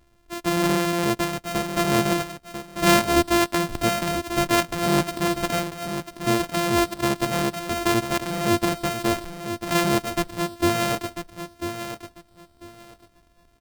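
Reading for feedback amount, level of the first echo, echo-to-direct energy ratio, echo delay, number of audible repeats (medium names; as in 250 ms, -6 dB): 20%, -9.0 dB, -9.0 dB, 994 ms, 2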